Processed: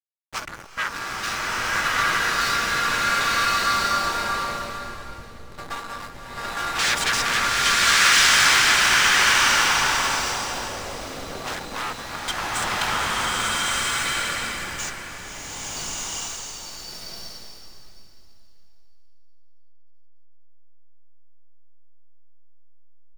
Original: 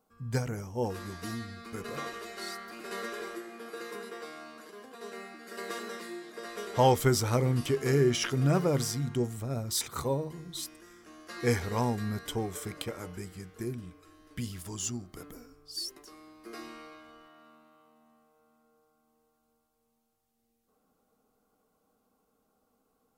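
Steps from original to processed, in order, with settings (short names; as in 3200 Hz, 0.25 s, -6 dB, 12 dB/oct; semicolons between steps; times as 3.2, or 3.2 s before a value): comb 3.5 ms, depth 94%; hum 50 Hz, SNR 10 dB; sine folder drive 17 dB, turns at -12.5 dBFS; weighting filter ITU-R 468; LFO band-pass sine 0.17 Hz 500–1600 Hz; pre-emphasis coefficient 0.8; backlash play -29.5 dBFS; bloom reverb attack 1.39 s, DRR -9 dB; gain +6 dB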